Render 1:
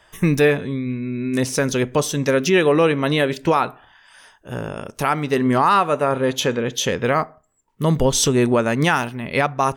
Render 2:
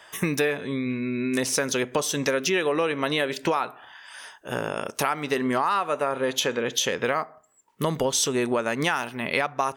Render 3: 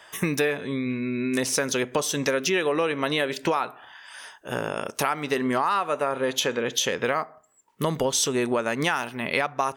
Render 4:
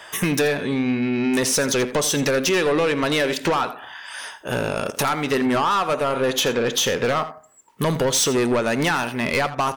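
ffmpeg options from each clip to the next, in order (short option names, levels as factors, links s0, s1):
-af "highpass=f=490:p=1,acompressor=threshold=0.0398:ratio=4,volume=1.88"
-af anull
-af "asoftclip=type=tanh:threshold=0.0631,aecho=1:1:83:0.178,volume=2.66"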